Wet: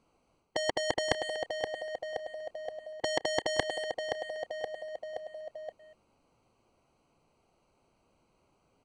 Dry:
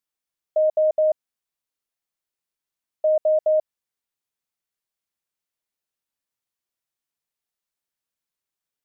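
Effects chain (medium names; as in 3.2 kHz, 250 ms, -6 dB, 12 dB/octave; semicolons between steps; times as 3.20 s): local Wiener filter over 25 samples; speakerphone echo 240 ms, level -26 dB; reverse; compression 6:1, threshold -29 dBFS, peak gain reduction 11 dB; reverse; resampled via 22.05 kHz; on a send: feedback delay 523 ms, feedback 43%, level -12 dB; on the sum: spectrum-flattening compressor 4:1; trim +7.5 dB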